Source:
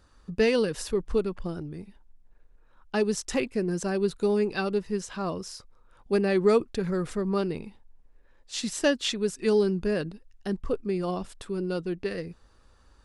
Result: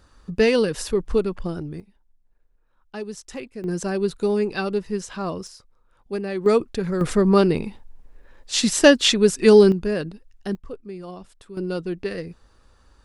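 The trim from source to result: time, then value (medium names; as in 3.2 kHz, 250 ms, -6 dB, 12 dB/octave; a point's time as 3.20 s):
+5 dB
from 1.80 s -7 dB
from 3.64 s +3 dB
from 5.47 s -3.5 dB
from 6.46 s +3.5 dB
from 7.01 s +11 dB
from 9.72 s +3 dB
from 10.55 s -7 dB
from 11.57 s +3 dB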